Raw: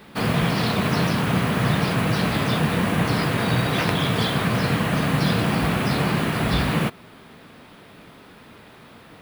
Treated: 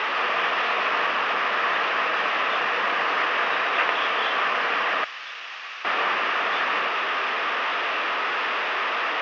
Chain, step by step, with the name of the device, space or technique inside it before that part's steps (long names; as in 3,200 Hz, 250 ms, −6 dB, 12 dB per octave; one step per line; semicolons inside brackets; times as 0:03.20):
digital answering machine (band-pass filter 380–3,000 Hz; linear delta modulator 32 kbit/s, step −21.5 dBFS; loudspeaker in its box 500–4,200 Hz, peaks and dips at 1,200 Hz +7 dB, 1,800 Hz +5 dB, 2,700 Hz +6 dB, 4,200 Hz −7 dB)
0:05.04–0:05.85: first-order pre-emphasis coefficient 0.97